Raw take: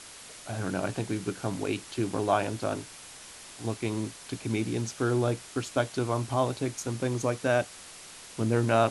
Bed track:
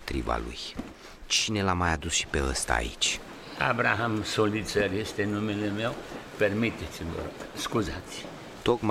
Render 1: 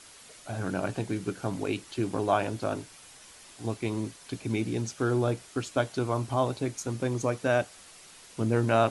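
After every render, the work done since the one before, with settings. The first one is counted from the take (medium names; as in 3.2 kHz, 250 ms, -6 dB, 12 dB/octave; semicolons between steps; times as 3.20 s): noise reduction 6 dB, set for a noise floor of -47 dBFS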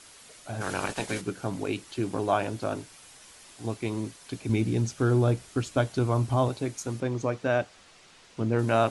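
0.60–1.20 s: spectral peaks clipped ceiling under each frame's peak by 19 dB; 4.49–6.49 s: bass shelf 170 Hz +10 dB; 7.00–8.59 s: distance through air 84 m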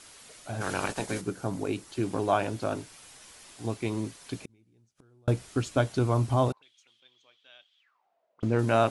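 0.92–1.97 s: peaking EQ 2.8 kHz -5 dB 1.5 oct; 4.45–5.28 s: inverted gate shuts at -28 dBFS, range -38 dB; 6.52–8.43 s: auto-wah 530–3300 Hz, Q 14, up, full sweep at -30.5 dBFS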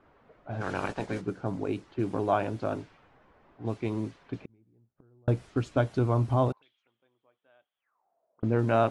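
low-pass 1.8 kHz 6 dB/octave; level-controlled noise filter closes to 1.1 kHz, open at -26 dBFS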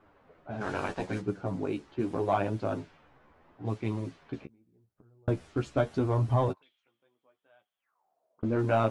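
in parallel at -8 dB: hard clipper -20.5 dBFS, distortion -13 dB; on the sum: flange 0.79 Hz, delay 9.2 ms, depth 5.2 ms, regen +16%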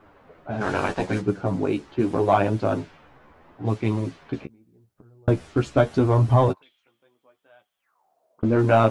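trim +8.5 dB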